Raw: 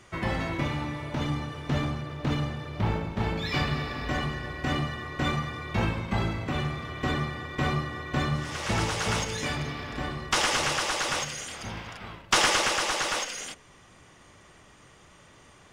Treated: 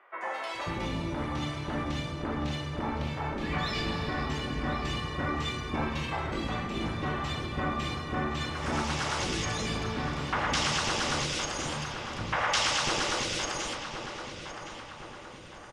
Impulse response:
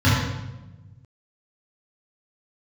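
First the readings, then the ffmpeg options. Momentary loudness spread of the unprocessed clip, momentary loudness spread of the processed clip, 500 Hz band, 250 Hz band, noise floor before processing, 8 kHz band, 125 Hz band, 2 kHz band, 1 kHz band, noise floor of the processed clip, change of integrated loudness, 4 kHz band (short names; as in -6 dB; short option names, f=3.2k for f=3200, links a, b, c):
10 LU, 10 LU, -1.5 dB, -1.5 dB, -55 dBFS, -3.5 dB, -4.5 dB, -2.5 dB, -1.0 dB, -45 dBFS, -2.5 dB, -1.5 dB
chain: -filter_complex "[0:a]lowpass=11k,acrossover=split=7400[a][b];[b]acompressor=threshold=-51dB:ratio=4:attack=1:release=60[c];[a][c]amix=inputs=2:normalize=0,acrossover=split=510|2100[d][e][f];[f]adelay=210[g];[d]adelay=540[h];[h][e][g]amix=inputs=3:normalize=0,asplit=2[i][j];[j]alimiter=limit=-23.5dB:level=0:latency=1,volume=-2dB[k];[i][k]amix=inputs=2:normalize=0,afftfilt=real='re*lt(hypot(re,im),0.398)':imag='im*lt(hypot(re,im),0.398)':win_size=1024:overlap=0.75,asplit=2[l][m];[m]adelay=1065,lowpass=f=3k:p=1,volume=-8dB,asplit=2[n][o];[o]adelay=1065,lowpass=f=3k:p=1,volume=0.52,asplit=2[p][q];[q]adelay=1065,lowpass=f=3k:p=1,volume=0.52,asplit=2[r][s];[s]adelay=1065,lowpass=f=3k:p=1,volume=0.52,asplit=2[t][u];[u]adelay=1065,lowpass=f=3k:p=1,volume=0.52,asplit=2[v][w];[w]adelay=1065,lowpass=f=3k:p=1,volume=0.52[x];[n][p][r][t][v][x]amix=inputs=6:normalize=0[y];[l][y]amix=inputs=2:normalize=0,volume=-4dB"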